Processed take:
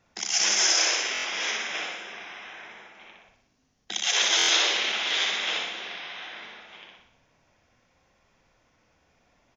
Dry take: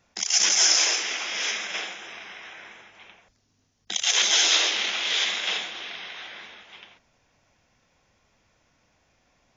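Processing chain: treble shelf 3.7 kHz -6.5 dB; hum notches 50/100/150/200 Hz; on a send: feedback delay 61 ms, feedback 53%, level -4.5 dB; on the sum: buffer glitch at 1.13/4.37 s, samples 1024, times 4

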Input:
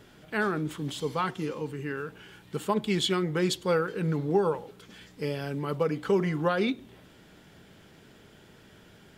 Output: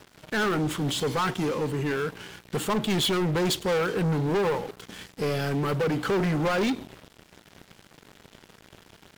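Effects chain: waveshaping leveller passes 5; trim -8.5 dB

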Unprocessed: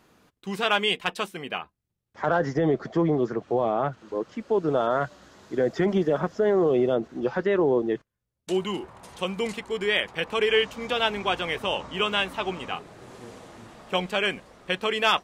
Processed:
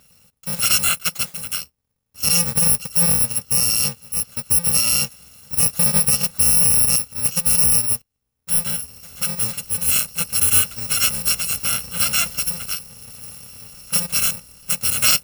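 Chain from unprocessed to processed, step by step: bit-reversed sample order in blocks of 128 samples; trim +6 dB

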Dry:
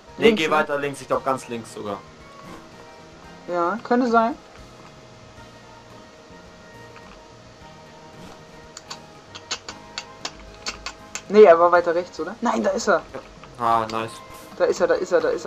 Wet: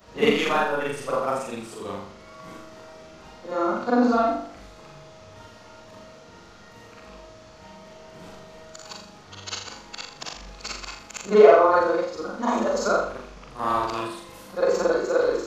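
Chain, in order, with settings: short-time spectra conjugated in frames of 123 ms; flutter echo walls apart 7 m, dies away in 0.54 s; trim -1 dB

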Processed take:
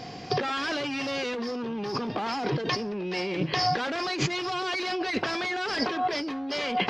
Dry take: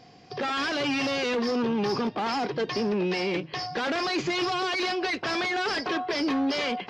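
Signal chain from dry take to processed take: compressor with a negative ratio -35 dBFS, ratio -1; trim +5.5 dB

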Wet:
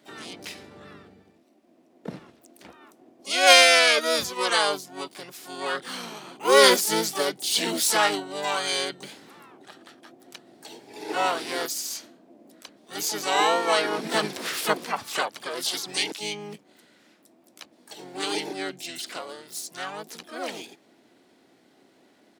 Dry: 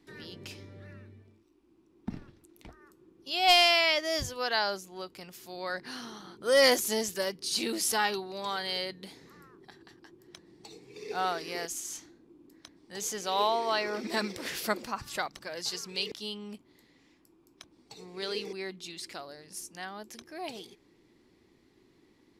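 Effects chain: harmony voices -5 st -1 dB, +7 st -13 dB, +12 st -6 dB; Bessel high-pass 280 Hz, order 2; trim +4 dB

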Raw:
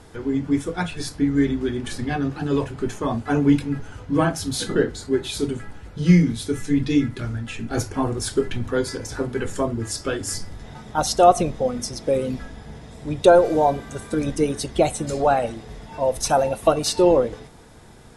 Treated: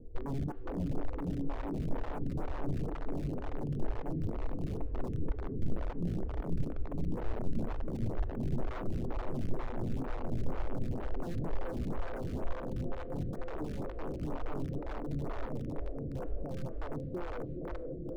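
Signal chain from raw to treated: Doppler pass-by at 4.74 s, 7 m/s, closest 4.8 m; steep low-pass 530 Hz 36 dB/octave; inverted gate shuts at -28 dBFS, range -28 dB; peaking EQ 360 Hz -2.5 dB 0.4 oct; echo that smears into a reverb 458 ms, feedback 77%, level -7 dB; in parallel at +0.5 dB: compressor with a negative ratio -46 dBFS, ratio -0.5; on the sum: integer overflow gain 34.5 dB; on a send at -16 dB: reverberation RT60 0.85 s, pre-delay 3 ms; on the sum: saturation -34 dBFS, distortion -23 dB; tilt EQ -4 dB/octave; lamp-driven phase shifter 2.1 Hz

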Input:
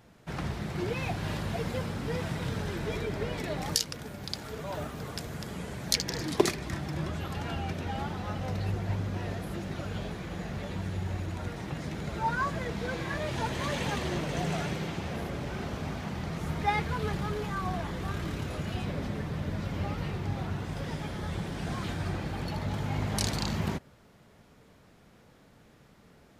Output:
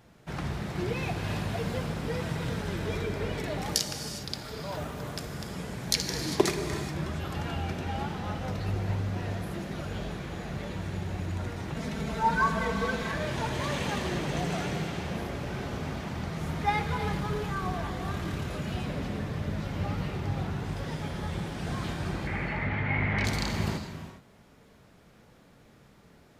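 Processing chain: 11.76–13.12 s: comb 4.5 ms, depth 94%; 22.27–23.25 s: resonant low-pass 2.1 kHz, resonance Q 6.7; gated-style reverb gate 440 ms flat, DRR 6 dB

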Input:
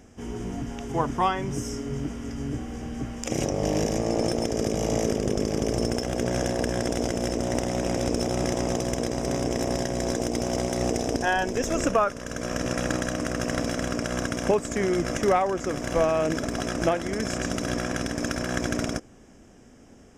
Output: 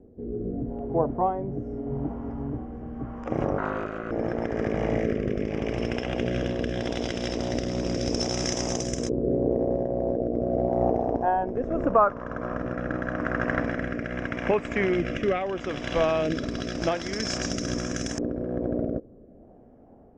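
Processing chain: LFO low-pass saw up 0.11 Hz 440–6900 Hz; 3.58–4.11 s: ring modulator 830 Hz; rotary cabinet horn 0.8 Hz

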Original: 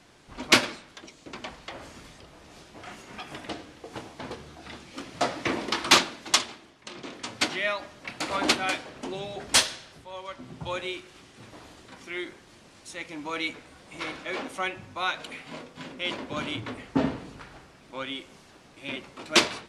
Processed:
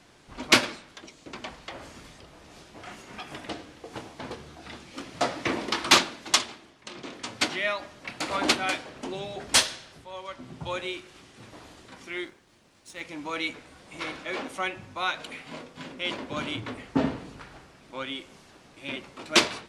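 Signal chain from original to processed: 12.25–13.01 s: companding laws mixed up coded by A

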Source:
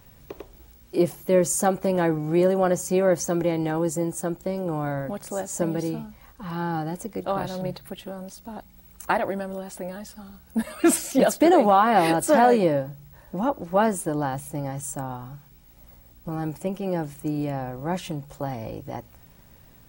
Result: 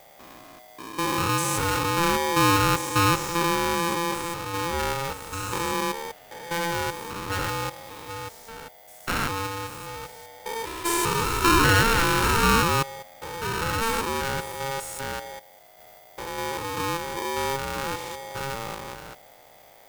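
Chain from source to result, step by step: spectrogram pixelated in time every 200 ms; polarity switched at an audio rate 680 Hz; trim +1.5 dB

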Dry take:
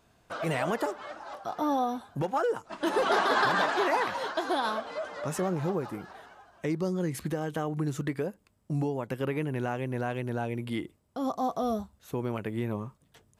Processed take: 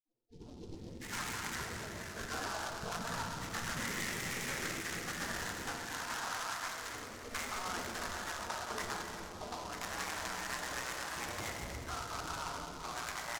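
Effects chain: low-pass 1.6 kHz 24 dB/octave; spectral gate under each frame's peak -25 dB weak; 5.70–6.88 s: tilt shelf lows -9.5 dB, about 680 Hz; compression, threshold -55 dBFS, peak gain reduction 12.5 dB; bands offset in time lows, highs 710 ms, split 530 Hz; simulated room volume 180 m³, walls hard, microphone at 0.51 m; delay time shaken by noise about 4.2 kHz, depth 0.069 ms; trim +16.5 dB

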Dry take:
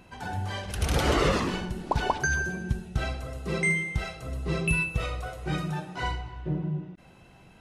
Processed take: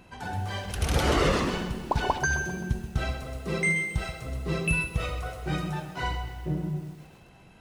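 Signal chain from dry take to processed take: bit-crushed delay 131 ms, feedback 55%, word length 8-bit, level -11 dB

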